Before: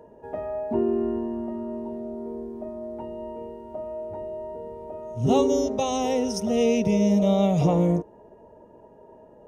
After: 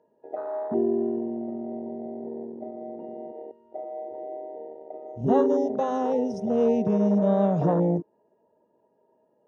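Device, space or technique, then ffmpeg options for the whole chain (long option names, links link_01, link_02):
over-cleaned archive recording: -af "highpass=170,lowpass=6100,afwtdn=0.0501"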